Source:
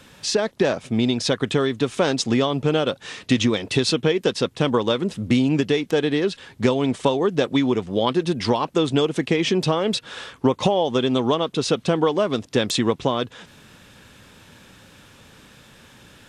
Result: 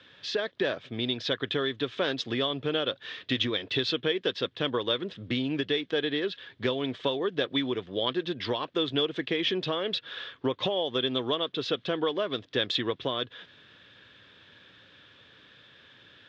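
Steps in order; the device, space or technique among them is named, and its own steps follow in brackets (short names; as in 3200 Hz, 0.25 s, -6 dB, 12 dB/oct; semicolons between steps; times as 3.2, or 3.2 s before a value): guitar cabinet (speaker cabinet 110–4400 Hz, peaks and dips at 160 Hz -6 dB, 220 Hz -8 dB, 840 Hz -7 dB, 1700 Hz +6 dB, 3400 Hz +9 dB); gain -8 dB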